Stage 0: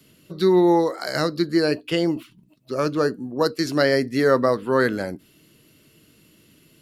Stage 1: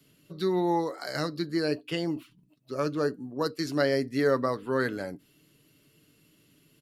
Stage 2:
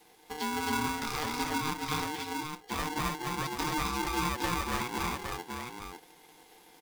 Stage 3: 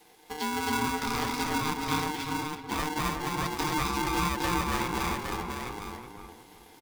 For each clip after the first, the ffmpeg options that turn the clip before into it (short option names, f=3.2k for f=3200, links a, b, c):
-af "aecho=1:1:7:0.33,volume=-8dB"
-filter_complex "[0:a]acompressor=threshold=-37dB:ratio=3,asplit=2[a][b];[b]aecho=0:1:221|264|275|814:0.2|0.562|0.596|0.562[c];[a][c]amix=inputs=2:normalize=0,aeval=exprs='val(0)*sgn(sin(2*PI*610*n/s))':c=same,volume=2.5dB"
-filter_complex "[0:a]asplit=2[a][b];[b]adelay=372,lowpass=f=1.2k:p=1,volume=-4dB,asplit=2[c][d];[d]adelay=372,lowpass=f=1.2k:p=1,volume=0.31,asplit=2[e][f];[f]adelay=372,lowpass=f=1.2k:p=1,volume=0.31,asplit=2[g][h];[h]adelay=372,lowpass=f=1.2k:p=1,volume=0.31[i];[a][c][e][g][i]amix=inputs=5:normalize=0,volume=2dB"